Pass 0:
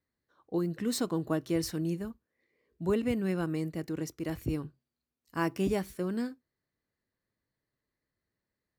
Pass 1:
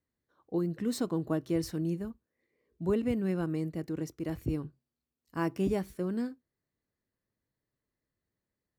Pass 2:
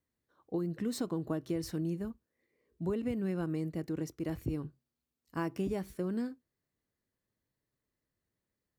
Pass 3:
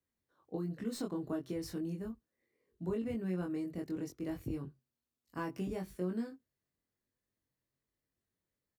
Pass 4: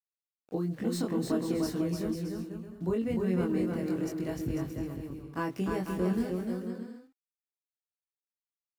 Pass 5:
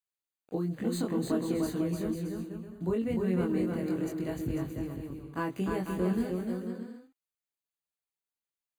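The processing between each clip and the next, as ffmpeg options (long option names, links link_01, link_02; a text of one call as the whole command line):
ffmpeg -i in.wav -af "tiltshelf=frequency=970:gain=3,volume=-2.5dB" out.wav
ffmpeg -i in.wav -af "acompressor=threshold=-30dB:ratio=6" out.wav
ffmpeg -i in.wav -filter_complex "[0:a]acrossover=split=120|1400[link_01][link_02][link_03];[link_03]aeval=exprs='clip(val(0),-1,0.01)':channel_layout=same[link_04];[link_01][link_02][link_04]amix=inputs=3:normalize=0,asplit=2[link_05][link_06];[link_06]adelay=22,volume=-2.5dB[link_07];[link_05][link_07]amix=inputs=2:normalize=0,volume=-5dB" out.wav
ffmpeg -i in.wav -filter_complex "[0:a]aeval=exprs='val(0)*gte(abs(val(0)),0.00106)':channel_layout=same,asplit=2[link_01][link_02];[link_02]aecho=0:1:300|495|621.8|704.1|757.7:0.631|0.398|0.251|0.158|0.1[link_03];[link_01][link_03]amix=inputs=2:normalize=0,volume=6dB" out.wav
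ffmpeg -i in.wav -af "asuperstop=centerf=5400:order=20:qfactor=5.7" out.wav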